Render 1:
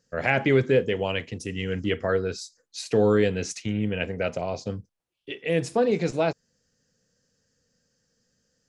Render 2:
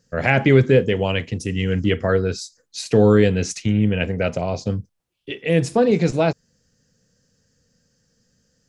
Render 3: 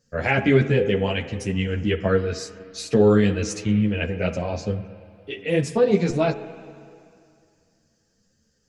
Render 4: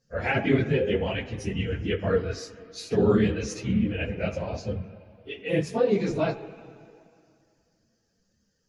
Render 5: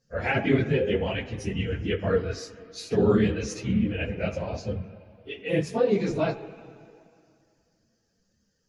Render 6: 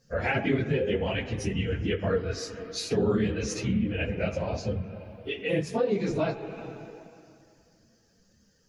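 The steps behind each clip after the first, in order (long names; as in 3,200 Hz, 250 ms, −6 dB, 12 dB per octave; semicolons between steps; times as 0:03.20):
bass and treble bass +6 dB, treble +1 dB; level +4.5 dB
spring reverb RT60 2.4 s, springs 35/49 ms, chirp 70 ms, DRR 12 dB; string-ensemble chorus
random phases in long frames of 50 ms; parametric band 8,000 Hz −10.5 dB 0.25 octaves; level −4.5 dB
no processing that can be heard
downward compressor 2 to 1, threshold −39 dBFS, peak gain reduction 12.5 dB; level +7.5 dB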